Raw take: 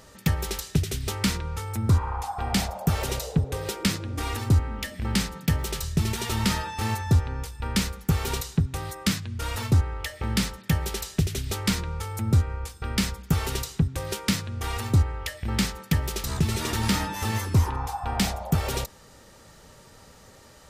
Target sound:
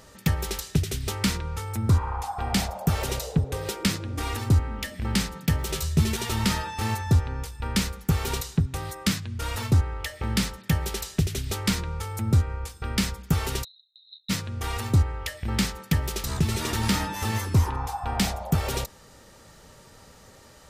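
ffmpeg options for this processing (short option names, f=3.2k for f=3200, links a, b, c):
-filter_complex "[0:a]asettb=1/sr,asplit=3[a][b][c];[a]atrim=end=5.684[d];[b]atrim=start=5.68:end=6.17,asetpts=PTS-STARTPTS,afade=t=in:d=0.004:c=qsin,afade=t=out:st=0.486:d=0.004:c=qsin,asplit=2[e][f];[f]adelay=13,volume=-3dB[g];[e][g]amix=inputs=2:normalize=0,atrim=end_sample=21609[h];[c]atrim=start=6.166[i];[d][h]acrossfade=d=0.004:c1=hsin:c2=qsin[j];[j][i]acrossfade=d=0.004:c1=qsin:c2=hsin,asplit=3[k][l][m];[k]afade=t=out:st=13.63:d=0.02[n];[l]asuperpass=centerf=3900:order=12:qfactor=7.9,afade=t=in:st=13.63:d=0.02,afade=t=out:st=14.29:d=0.02[o];[m]afade=t=in:st=14.29:d=0.02[p];[n][o][p]amix=inputs=3:normalize=0"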